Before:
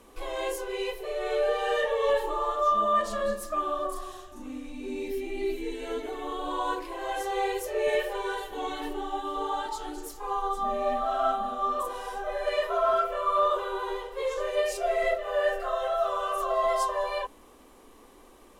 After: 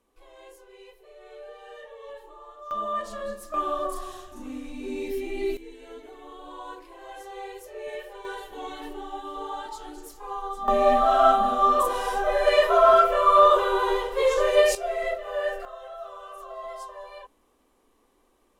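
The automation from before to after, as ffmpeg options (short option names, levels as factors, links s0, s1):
-af "asetnsamples=n=441:p=0,asendcmd='2.71 volume volume -5dB;3.54 volume volume 2dB;5.57 volume volume -10dB;8.25 volume volume -3.5dB;10.68 volume volume 8.5dB;14.75 volume volume -2dB;15.65 volume volume -12dB',volume=0.133"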